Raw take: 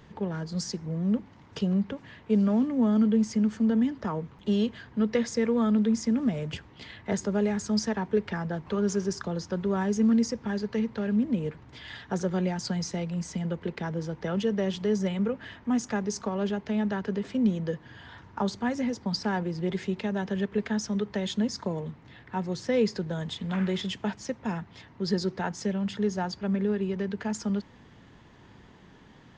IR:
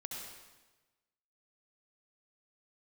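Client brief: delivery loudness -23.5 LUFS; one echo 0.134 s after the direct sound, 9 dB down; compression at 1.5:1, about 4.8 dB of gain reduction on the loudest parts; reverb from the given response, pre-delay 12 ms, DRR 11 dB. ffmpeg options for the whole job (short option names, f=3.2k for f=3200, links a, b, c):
-filter_complex "[0:a]acompressor=threshold=-33dB:ratio=1.5,aecho=1:1:134:0.355,asplit=2[a][b];[1:a]atrim=start_sample=2205,adelay=12[c];[b][c]afir=irnorm=-1:irlink=0,volume=-10dB[d];[a][d]amix=inputs=2:normalize=0,volume=8.5dB"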